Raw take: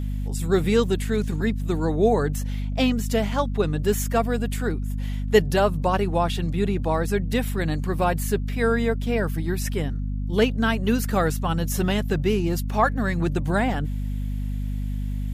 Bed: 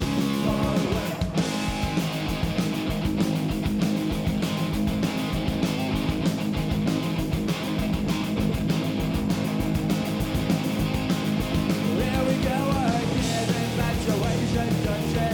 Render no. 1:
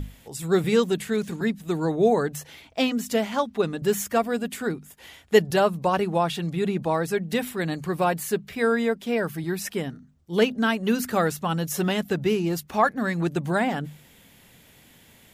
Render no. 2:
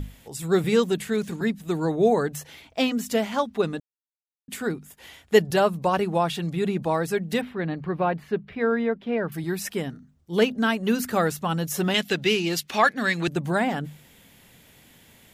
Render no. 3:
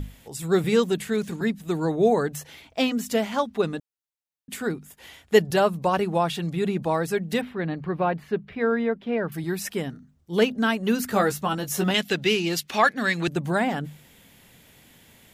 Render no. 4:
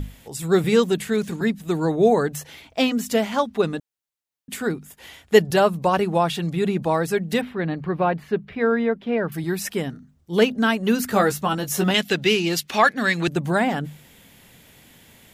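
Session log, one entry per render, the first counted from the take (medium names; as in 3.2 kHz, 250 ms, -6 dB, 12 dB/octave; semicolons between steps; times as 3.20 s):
hum notches 50/100/150/200/250 Hz
3.80–4.48 s: mute; 7.41–9.32 s: distance through air 360 m; 11.94–13.28 s: frequency weighting D
11.08–11.91 s: doubling 15 ms -5 dB
trim +3 dB; peak limiter -3 dBFS, peak gain reduction 1 dB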